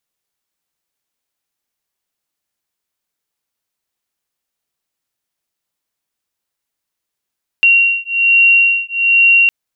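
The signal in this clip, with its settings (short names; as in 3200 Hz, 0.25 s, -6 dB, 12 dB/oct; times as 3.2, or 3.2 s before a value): beating tones 2750 Hz, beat 1.2 Hz, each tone -11.5 dBFS 1.86 s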